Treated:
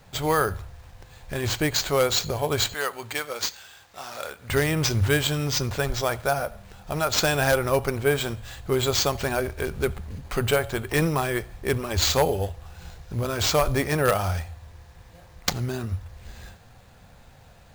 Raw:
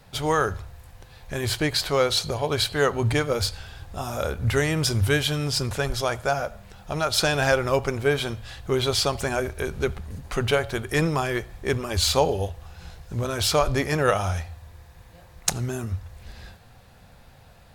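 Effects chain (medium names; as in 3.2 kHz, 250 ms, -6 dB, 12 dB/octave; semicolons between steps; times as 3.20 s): one-sided wavefolder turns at -12 dBFS; 2.74–4.50 s: high-pass 1.4 kHz 6 dB/octave; sample-and-hold 4×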